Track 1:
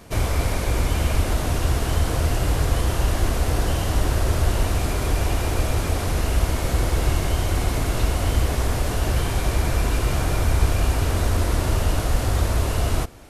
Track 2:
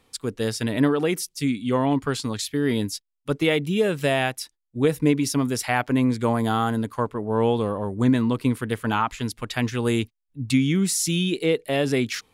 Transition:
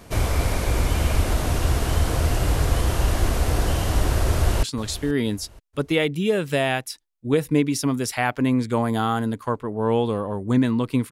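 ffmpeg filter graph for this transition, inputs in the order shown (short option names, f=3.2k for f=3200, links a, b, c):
-filter_complex "[0:a]apad=whole_dur=11.11,atrim=end=11.11,atrim=end=4.632[a];[1:a]atrim=start=2.138:end=8.62[b];[a][b]acrossfade=d=0.004:c1=hsin:c2=hsin,asplit=2[c][d];[d]afade=t=in:st=4.29:d=0.01,afade=t=out:st=4.63:d=0.01,aecho=0:1:480|960|1440:0.158489|0.0475468|0.014264[e];[c][e]amix=inputs=2:normalize=0"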